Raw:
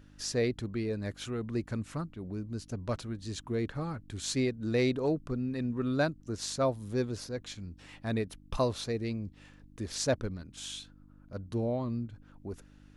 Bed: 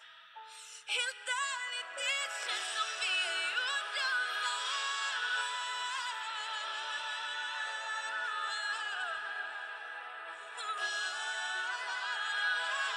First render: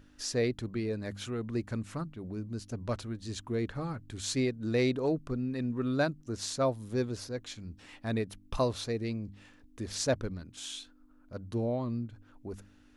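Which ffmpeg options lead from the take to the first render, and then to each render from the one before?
-af "bandreject=f=50:t=h:w=4,bandreject=f=100:t=h:w=4,bandreject=f=150:t=h:w=4,bandreject=f=200:t=h:w=4"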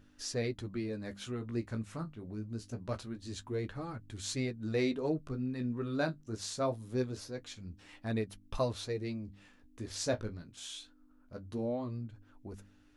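-af "flanger=delay=8.9:depth=9.7:regen=-32:speed=0.24:shape=sinusoidal"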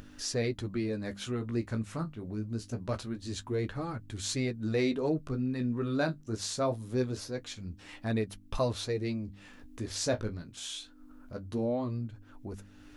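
-filter_complex "[0:a]asplit=2[a][b];[b]alimiter=level_in=6dB:limit=-24dB:level=0:latency=1:release=18,volume=-6dB,volume=-2.5dB[c];[a][c]amix=inputs=2:normalize=0,acompressor=mode=upward:threshold=-42dB:ratio=2.5"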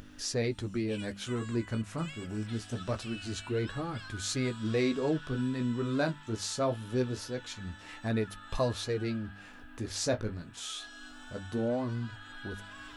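-filter_complex "[1:a]volume=-14dB[a];[0:a][a]amix=inputs=2:normalize=0"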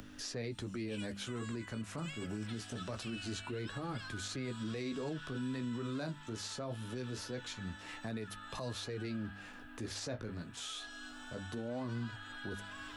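-filter_complex "[0:a]acrossover=split=100|210|1000|3700[a][b][c][d][e];[a]acompressor=threshold=-56dB:ratio=4[f];[b]acompressor=threshold=-40dB:ratio=4[g];[c]acompressor=threshold=-37dB:ratio=4[h];[d]acompressor=threshold=-45dB:ratio=4[i];[e]acompressor=threshold=-47dB:ratio=4[j];[f][g][h][i][j]amix=inputs=5:normalize=0,alimiter=level_in=7.5dB:limit=-24dB:level=0:latency=1:release=35,volume=-7.5dB"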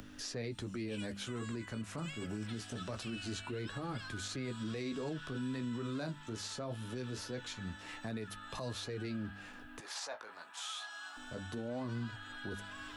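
-filter_complex "[0:a]asettb=1/sr,asplit=3[a][b][c];[a]atrim=end=9.804[d];[b]atrim=start=9.8:end=11.17,asetpts=PTS-STARTPTS,afade=t=in:d=0.004:c=qsin,afade=t=out:st=1.366:d=0.004:c=qsin,highpass=f=880:t=q:w=2.6[e];[c]atrim=start=11.166[f];[d][e]acrossfade=d=0.004:c1=hsin:c2=qsin[g];[g][f]acrossfade=d=0.004:c1=qsin:c2=hsin"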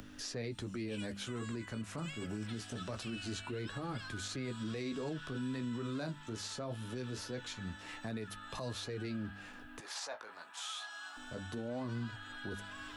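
-af anull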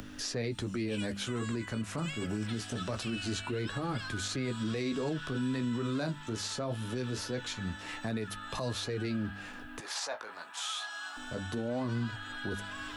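-af "volume=6dB"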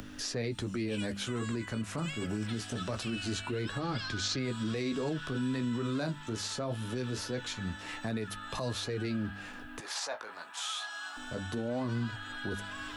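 -filter_complex "[0:a]asettb=1/sr,asplit=3[a][b][c];[a]atrim=end=3.804[d];[b]atrim=start=3.8:end=4.39,asetpts=PTS-STARTPTS,afade=t=in:d=0.004:c=qsin,afade=t=out:st=0.586:d=0.004:c=qsin,lowpass=f=5.3k:t=q:w=2.1[e];[c]atrim=start=4.386[f];[d][e]acrossfade=d=0.004:c1=hsin:c2=qsin[g];[g][f]acrossfade=d=0.004:c1=qsin:c2=hsin"

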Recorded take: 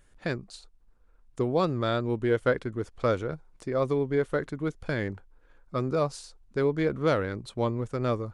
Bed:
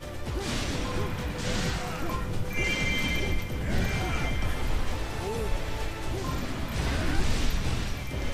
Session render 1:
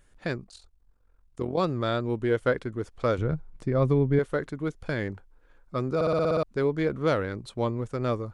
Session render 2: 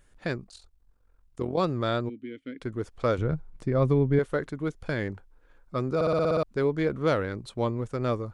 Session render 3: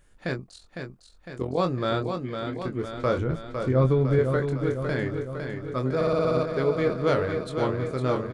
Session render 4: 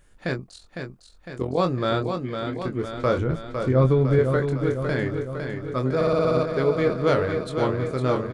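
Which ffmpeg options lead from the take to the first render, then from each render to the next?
-filter_complex "[0:a]asettb=1/sr,asplit=3[a][b][c];[a]atrim=end=0.444[d];[b]atrim=start=0.44:end=1.58,asetpts=PTS-STARTPTS,afade=t=in:d=0.004:c=qsin,afade=t=out:st=1.136:d=0.004:c=qsin,tremolo=f=44:d=0.75[e];[c]atrim=start=1.576[f];[d][e]acrossfade=d=0.004:c1=hsin:c2=qsin[g];[g][f]acrossfade=d=0.004:c1=qsin:c2=hsin,asettb=1/sr,asplit=3[h][i][j];[h]atrim=end=3.184[k];[i]atrim=start=3.18:end=4.19,asetpts=PTS-STARTPTS,afade=t=in:d=0.004:c=qsin,afade=t=out:st=1.006:d=0.004:c=qsin,bass=f=250:g=11,treble=f=4k:g=-6[l];[j]atrim=start=4.186[m];[k][l]acrossfade=d=0.004:c1=hsin:c2=qsin[n];[n][m]acrossfade=d=0.004:c1=qsin:c2=hsin,asplit=9[o][p][q][r][s][t][u][v][w];[o]atrim=end=6.012[x];[p]atrim=start=5.948:end=6.012[y];[q]atrim=start=5.948:end=6.012[z];[r]atrim=start=5.948:end=6.012[aa];[s]atrim=start=5.948:end=6.012[ab];[t]atrim=start=5.948:end=6.012[ac];[u]atrim=start=5.948:end=6.012[ad];[v]atrim=start=5.948:end=6.012[ae];[w]atrim=start=6.428[af];[x][y]acrossfade=d=0.004:c1=hsin:c2=hsin[ag];[ag][z]acrossfade=d=0.004:c1=hsin:c2=hsin[ah];[ah][aa]acrossfade=d=0.004:c1=hsin:c2=hsin[ai];[ai][ab]acrossfade=d=0.004:c1=hsin:c2=hsin[aj];[aj][ac]acrossfade=d=0.004:c1=hsin:c2=hsin[ak];[ak][ad]acrossfade=d=0.004:c1=hsin:c2=hsin[al];[al][ae]acrossfade=d=0.004:c1=hsin:c2=hsin[am];[am][af]acrossfade=d=0.004:c1=hsin:c2=hsin"
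-filter_complex "[0:a]asplit=3[a][b][c];[a]afade=t=out:st=2.08:d=0.02[d];[b]asplit=3[e][f][g];[e]bandpass=f=270:t=q:w=8,volume=0dB[h];[f]bandpass=f=2.29k:t=q:w=8,volume=-6dB[i];[g]bandpass=f=3.01k:t=q:w=8,volume=-9dB[j];[h][i][j]amix=inputs=3:normalize=0,afade=t=in:st=2.08:d=0.02,afade=t=out:st=2.6:d=0.02[k];[c]afade=t=in:st=2.6:d=0.02[l];[d][k][l]amix=inputs=3:normalize=0"
-filter_complex "[0:a]asplit=2[a][b];[b]adelay=23,volume=-6dB[c];[a][c]amix=inputs=2:normalize=0,aecho=1:1:506|1012|1518|2024|2530|3036|3542|4048:0.473|0.284|0.17|0.102|0.0613|0.0368|0.0221|0.0132"
-af "volume=2.5dB"

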